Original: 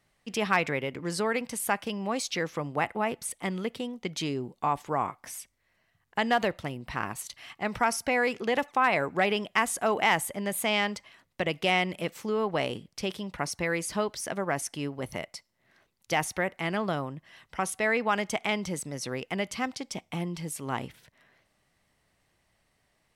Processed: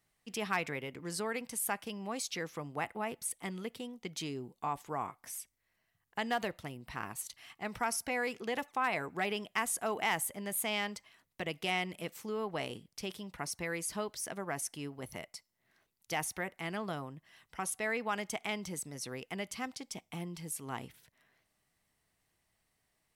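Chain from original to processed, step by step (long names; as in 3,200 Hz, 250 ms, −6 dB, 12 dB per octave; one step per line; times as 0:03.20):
high-shelf EQ 8,500 Hz +11.5 dB
notch filter 560 Hz, Q 12
level −8.5 dB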